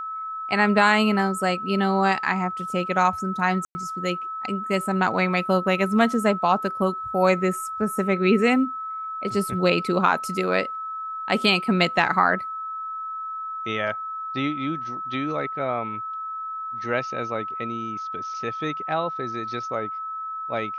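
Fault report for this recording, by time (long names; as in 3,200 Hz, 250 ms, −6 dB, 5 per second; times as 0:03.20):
whistle 1,300 Hz −29 dBFS
0:03.65–0:03.75: drop-out 100 ms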